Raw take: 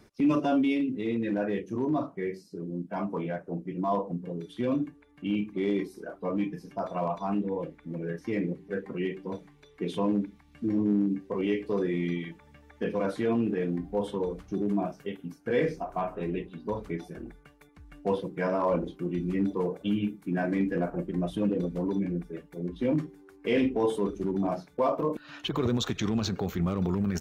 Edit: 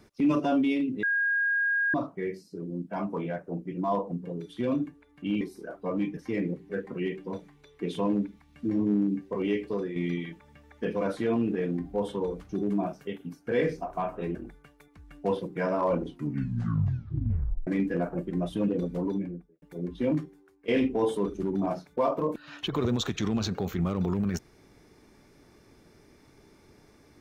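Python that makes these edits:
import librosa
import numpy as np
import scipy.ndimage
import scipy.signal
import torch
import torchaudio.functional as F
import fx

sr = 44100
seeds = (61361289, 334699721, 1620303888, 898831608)

y = fx.studio_fade_out(x, sr, start_s=21.82, length_s=0.61)
y = fx.edit(y, sr, fx.bleep(start_s=1.03, length_s=0.91, hz=1630.0, db=-23.0),
    fx.cut(start_s=5.41, length_s=0.39),
    fx.cut(start_s=6.56, length_s=1.6),
    fx.fade_out_to(start_s=11.63, length_s=0.32, floor_db=-8.5),
    fx.cut(start_s=16.34, length_s=0.82),
    fx.tape_stop(start_s=18.81, length_s=1.67),
    fx.fade_out_to(start_s=22.93, length_s=0.56, floor_db=-17.5), tone=tone)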